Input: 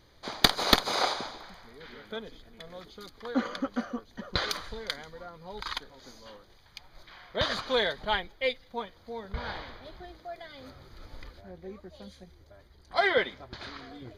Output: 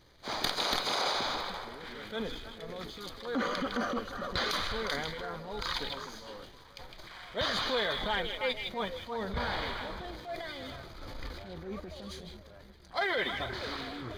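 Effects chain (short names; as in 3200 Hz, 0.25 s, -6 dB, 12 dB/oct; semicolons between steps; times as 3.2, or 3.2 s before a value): transient shaper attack -8 dB, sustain +7 dB; compressor 6:1, threshold -32 dBFS, peak gain reduction 12.5 dB; delay with a stepping band-pass 0.157 s, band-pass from 3000 Hz, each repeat -1.4 oct, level -2 dB; sample leveller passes 1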